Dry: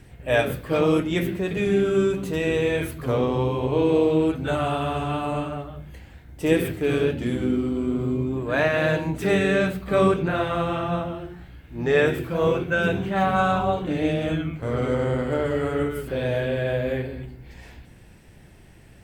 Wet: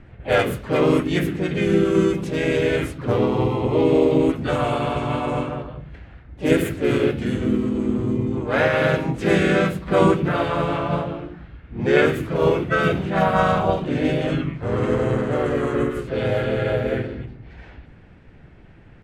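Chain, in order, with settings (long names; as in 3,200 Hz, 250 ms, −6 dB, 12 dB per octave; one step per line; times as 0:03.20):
low-pass that shuts in the quiet parts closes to 2,300 Hz, open at −19 dBFS
pitch-shifted copies added −3 semitones −1 dB, +4 semitones −10 dB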